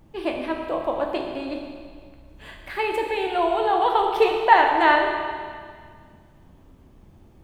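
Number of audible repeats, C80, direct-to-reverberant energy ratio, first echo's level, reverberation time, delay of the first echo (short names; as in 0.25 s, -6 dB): none, 5.0 dB, 1.5 dB, none, 1.9 s, none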